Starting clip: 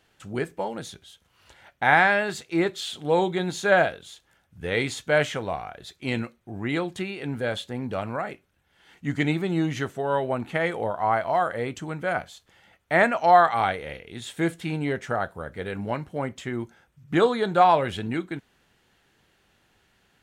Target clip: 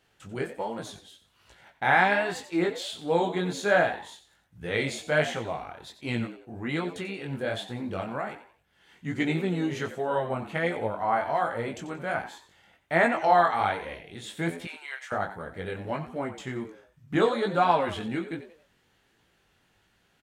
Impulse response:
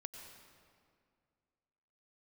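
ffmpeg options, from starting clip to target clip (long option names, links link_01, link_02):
-filter_complex "[0:a]asettb=1/sr,asplit=3[link_01][link_02][link_03];[link_01]atrim=end=14.654[link_04];[link_02]atrim=start=14.65:end=15.12,asetpts=PTS-STARTPTS,afade=type=in:duration=0.004:curve=qsin,afade=type=out:start_time=0.466:duration=0.004:curve=qsin,highpass=frequency=1000:width=0.5412,highpass=frequency=1000:width=1.3066[link_05];[link_03]atrim=start=15.116[link_06];[link_04][link_05]acrossfade=duration=0.004:curve1=hsin:curve2=qsin[link_07];[link_07][link_06]acrossfade=duration=0.004:curve1=qsin:curve2=hsin,flanger=delay=17:depth=5.8:speed=1.3,asplit=2[link_08][link_09];[link_09]asplit=3[link_10][link_11][link_12];[link_10]adelay=90,afreqshift=89,volume=-12.5dB[link_13];[link_11]adelay=180,afreqshift=178,volume=-21.9dB[link_14];[link_12]adelay=270,afreqshift=267,volume=-31.2dB[link_15];[link_13][link_14][link_15]amix=inputs=3:normalize=0[link_16];[link_08][link_16]amix=inputs=2:normalize=0"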